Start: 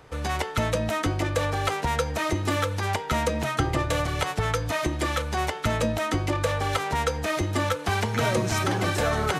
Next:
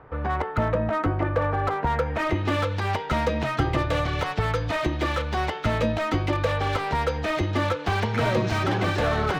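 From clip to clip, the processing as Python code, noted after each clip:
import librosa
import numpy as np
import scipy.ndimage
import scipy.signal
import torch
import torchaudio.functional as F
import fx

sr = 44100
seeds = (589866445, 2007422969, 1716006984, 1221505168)

y = fx.filter_sweep_lowpass(x, sr, from_hz=1400.0, to_hz=4000.0, start_s=1.82, end_s=2.62, q=1.2)
y = fx.air_absorb(y, sr, metres=55.0)
y = fx.slew_limit(y, sr, full_power_hz=82.0)
y = y * 10.0 ** (1.5 / 20.0)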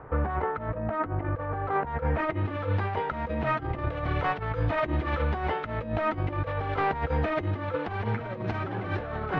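y = scipy.signal.sosfilt(scipy.signal.butter(2, 2000.0, 'lowpass', fs=sr, output='sos'), x)
y = fx.over_compress(y, sr, threshold_db=-28.0, ratio=-0.5)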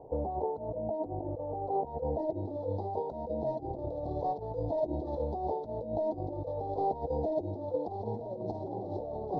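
y = scipy.signal.sosfilt(scipy.signal.cheby2(4, 40, [1200.0, 3000.0], 'bandstop', fs=sr, output='sos'), x)
y = fx.bass_treble(y, sr, bass_db=-11, treble_db=-12)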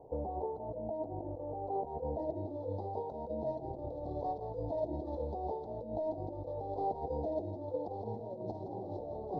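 y = x + 10.0 ** (-10.5 / 20.0) * np.pad(x, (int(166 * sr / 1000.0), 0))[:len(x)]
y = y * 10.0 ** (-4.5 / 20.0)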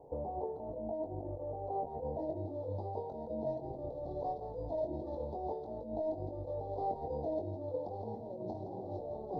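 y = fx.notch(x, sr, hz=2800.0, q=7.5)
y = fx.doubler(y, sr, ms=22.0, db=-6.0)
y = y * 10.0 ** (-1.5 / 20.0)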